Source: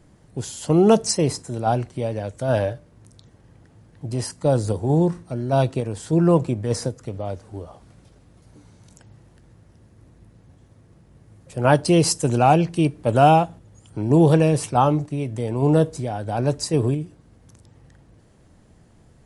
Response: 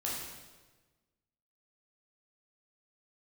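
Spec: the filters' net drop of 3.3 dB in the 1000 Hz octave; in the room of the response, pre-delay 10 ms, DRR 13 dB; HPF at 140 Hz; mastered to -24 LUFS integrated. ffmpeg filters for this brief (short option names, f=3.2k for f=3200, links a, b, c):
-filter_complex "[0:a]highpass=140,equalizer=f=1k:t=o:g=-5,asplit=2[a][b];[1:a]atrim=start_sample=2205,adelay=10[c];[b][c]afir=irnorm=-1:irlink=0,volume=-16.5dB[d];[a][d]amix=inputs=2:normalize=0,volume=-2dB"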